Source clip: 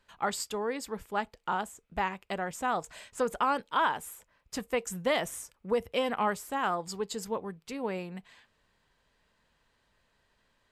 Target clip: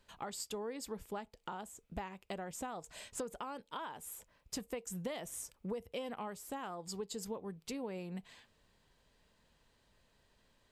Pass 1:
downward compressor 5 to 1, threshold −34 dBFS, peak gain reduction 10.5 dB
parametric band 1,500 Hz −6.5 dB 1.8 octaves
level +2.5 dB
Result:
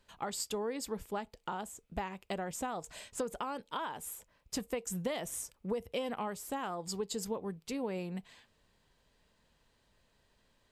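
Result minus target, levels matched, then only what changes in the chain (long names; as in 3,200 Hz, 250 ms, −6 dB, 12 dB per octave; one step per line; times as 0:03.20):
downward compressor: peak gain reduction −5 dB
change: downward compressor 5 to 1, threshold −40.5 dBFS, peak gain reduction 16 dB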